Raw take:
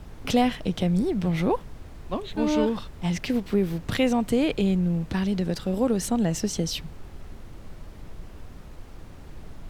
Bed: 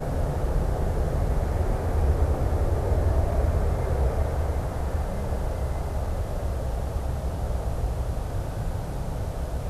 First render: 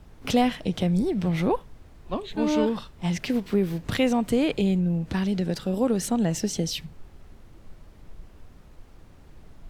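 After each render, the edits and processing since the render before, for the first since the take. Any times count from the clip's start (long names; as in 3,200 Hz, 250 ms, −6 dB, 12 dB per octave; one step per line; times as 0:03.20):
noise reduction from a noise print 7 dB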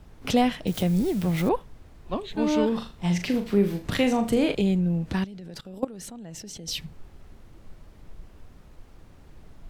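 0:00.67–0:01.49: spike at every zero crossing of −28.5 dBFS
0:02.68–0:04.55: flutter between parallel walls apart 6.8 metres, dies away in 0.3 s
0:05.24–0:06.68: output level in coarse steps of 20 dB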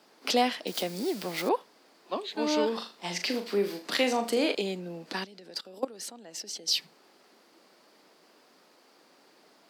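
Bessel high-pass filter 400 Hz, order 6
parametric band 4,700 Hz +10 dB 0.38 octaves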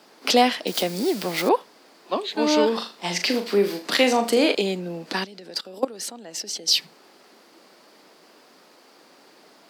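level +7.5 dB
brickwall limiter −3 dBFS, peak gain reduction 1 dB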